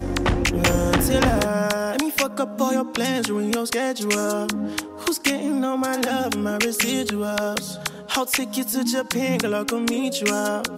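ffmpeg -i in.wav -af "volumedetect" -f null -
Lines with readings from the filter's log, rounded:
mean_volume: -22.7 dB
max_volume: -6.2 dB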